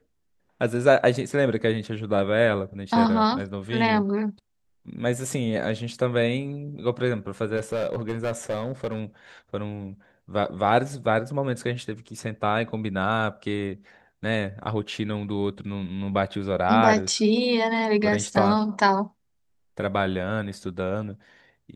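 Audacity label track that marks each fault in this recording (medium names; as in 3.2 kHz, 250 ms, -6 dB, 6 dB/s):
7.560000	9.010000	clipped -22 dBFS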